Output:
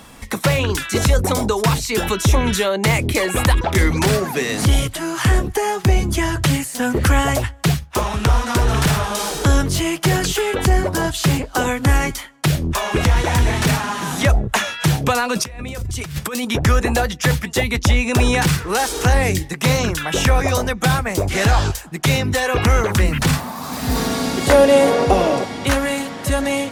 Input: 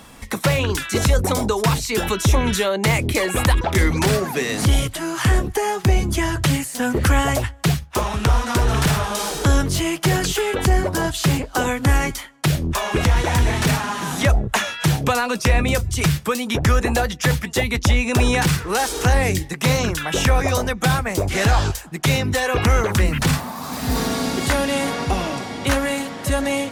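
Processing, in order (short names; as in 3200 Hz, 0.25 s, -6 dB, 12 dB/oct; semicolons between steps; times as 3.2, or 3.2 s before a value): 15.36–16.45 negative-ratio compressor -28 dBFS, ratio -1; 24.47–25.45 bell 510 Hz +12.5 dB 1.2 oct; gain +1.5 dB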